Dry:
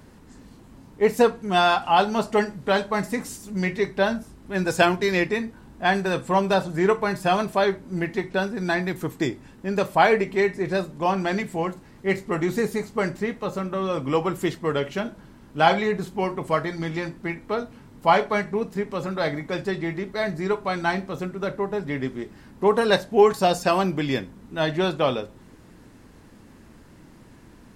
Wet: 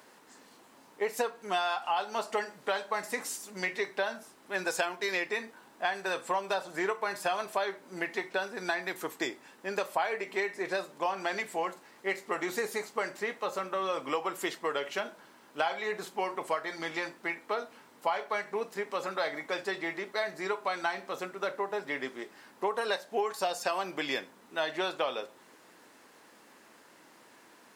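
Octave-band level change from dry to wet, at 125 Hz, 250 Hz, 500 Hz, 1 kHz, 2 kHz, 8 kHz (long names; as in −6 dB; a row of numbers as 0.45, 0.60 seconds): −23.5, −15.5, −10.5, −9.0, −6.0, −3.0 decibels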